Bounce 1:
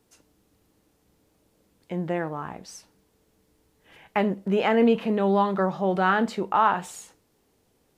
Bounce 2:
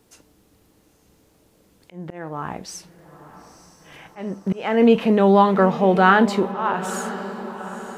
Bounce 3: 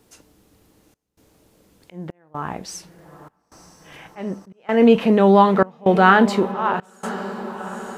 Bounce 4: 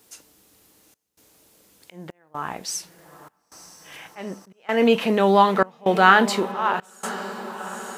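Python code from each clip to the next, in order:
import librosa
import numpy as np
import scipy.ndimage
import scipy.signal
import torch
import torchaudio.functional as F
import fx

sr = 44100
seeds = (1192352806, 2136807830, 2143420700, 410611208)

y1 = fx.auto_swell(x, sr, attack_ms=442.0)
y1 = fx.echo_diffused(y1, sr, ms=928, feedback_pct=54, wet_db=-14)
y1 = F.gain(torch.from_numpy(y1), 7.5).numpy()
y2 = fx.step_gate(y1, sr, bpm=64, pattern='xxxx.xxxx.', floor_db=-24.0, edge_ms=4.5)
y2 = F.gain(torch.from_numpy(y2), 1.5).numpy()
y3 = fx.tilt_eq(y2, sr, slope=2.5)
y3 = F.gain(torch.from_numpy(y3), -1.0).numpy()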